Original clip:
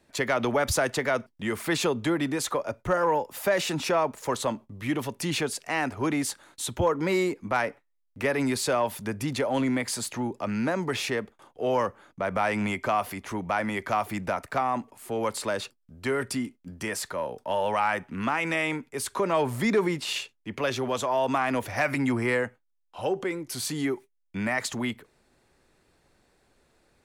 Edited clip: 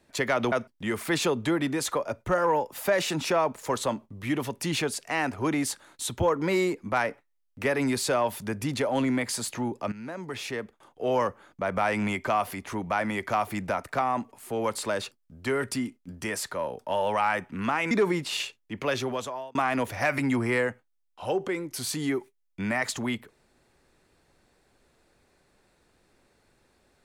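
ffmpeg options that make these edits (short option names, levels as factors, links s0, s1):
-filter_complex "[0:a]asplit=5[s0][s1][s2][s3][s4];[s0]atrim=end=0.522[s5];[s1]atrim=start=1.108:end=10.51,asetpts=PTS-STARTPTS,afade=t=out:st=9.398:d=0.004:c=hsin:silence=0.177828[s6];[s2]atrim=start=10.51:end=18.502,asetpts=PTS-STARTPTS,afade=t=in:d=1.21:silence=0.177828[s7];[s3]atrim=start=19.668:end=21.31,asetpts=PTS-STARTPTS,afade=t=out:st=1.092:d=0.55[s8];[s4]atrim=start=21.31,asetpts=PTS-STARTPTS,afade=t=in:d=0.004:c=hsin[s9];[s6][s7]concat=n=2:v=0:a=1[s10];[s5][s10]acrossfade=d=0.004:c1=hsin:c2=hsin[s11];[s8][s9]concat=n=2:v=0:a=1[s12];[s11][s12]acrossfade=d=0.004:c1=hsin:c2=hsin"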